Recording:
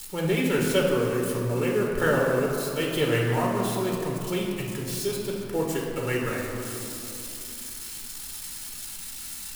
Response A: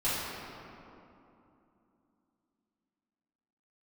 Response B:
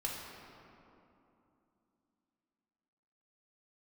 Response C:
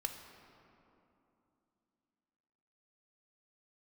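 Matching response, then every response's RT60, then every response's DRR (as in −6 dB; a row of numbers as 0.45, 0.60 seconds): B; 2.9, 2.9, 2.9 seconds; −12.5, −2.5, 5.0 decibels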